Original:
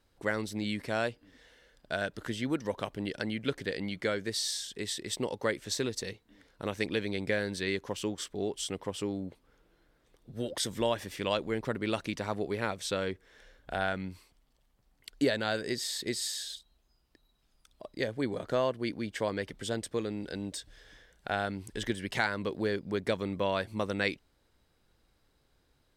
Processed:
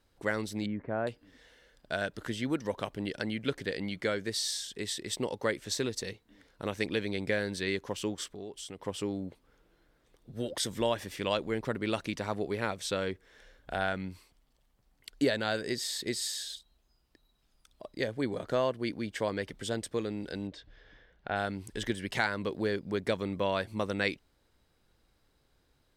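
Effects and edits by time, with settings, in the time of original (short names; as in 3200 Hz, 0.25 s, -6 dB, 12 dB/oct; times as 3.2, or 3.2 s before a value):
0.66–1.07 Bessel low-pass 1100 Hz, order 4
8.27–8.82 compressor 2:1, threshold -45 dBFS
20.47–21.36 air absorption 240 m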